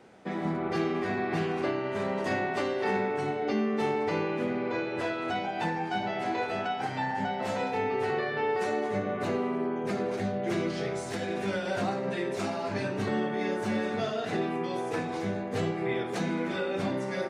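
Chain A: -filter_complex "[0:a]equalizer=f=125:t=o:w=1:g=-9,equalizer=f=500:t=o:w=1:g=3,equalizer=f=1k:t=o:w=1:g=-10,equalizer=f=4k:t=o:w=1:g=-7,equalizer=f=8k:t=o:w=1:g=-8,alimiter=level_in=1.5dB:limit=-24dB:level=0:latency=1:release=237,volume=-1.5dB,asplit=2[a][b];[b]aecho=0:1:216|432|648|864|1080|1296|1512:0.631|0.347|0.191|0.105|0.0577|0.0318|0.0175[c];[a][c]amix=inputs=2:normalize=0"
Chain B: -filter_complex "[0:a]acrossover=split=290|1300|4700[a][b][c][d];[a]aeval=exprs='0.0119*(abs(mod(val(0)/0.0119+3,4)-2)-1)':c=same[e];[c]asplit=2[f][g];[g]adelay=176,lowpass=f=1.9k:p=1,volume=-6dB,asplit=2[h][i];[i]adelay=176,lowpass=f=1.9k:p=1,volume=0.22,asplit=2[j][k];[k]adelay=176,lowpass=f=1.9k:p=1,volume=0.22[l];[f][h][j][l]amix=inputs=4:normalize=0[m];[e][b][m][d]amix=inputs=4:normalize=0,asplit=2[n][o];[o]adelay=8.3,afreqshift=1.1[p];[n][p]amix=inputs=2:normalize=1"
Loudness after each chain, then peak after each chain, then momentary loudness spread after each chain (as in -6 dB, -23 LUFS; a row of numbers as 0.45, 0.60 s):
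-33.5, -35.0 LUFS; -20.5, -20.5 dBFS; 4, 4 LU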